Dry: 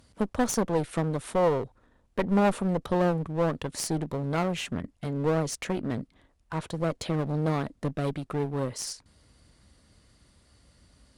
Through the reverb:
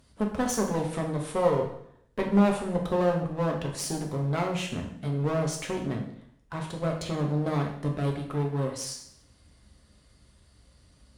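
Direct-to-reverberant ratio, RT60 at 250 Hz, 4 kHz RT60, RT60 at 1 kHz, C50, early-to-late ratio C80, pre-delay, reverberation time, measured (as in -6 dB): 1.0 dB, 0.70 s, 0.65 s, 0.70 s, 6.5 dB, 10.0 dB, 3 ms, 0.70 s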